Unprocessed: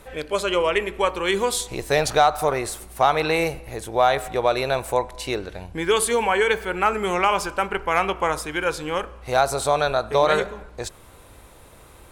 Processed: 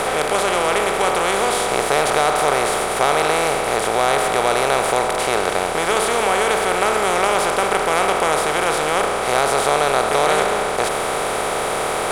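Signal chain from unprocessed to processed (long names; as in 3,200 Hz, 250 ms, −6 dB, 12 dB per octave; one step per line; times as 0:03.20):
compressor on every frequency bin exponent 0.2
level −6.5 dB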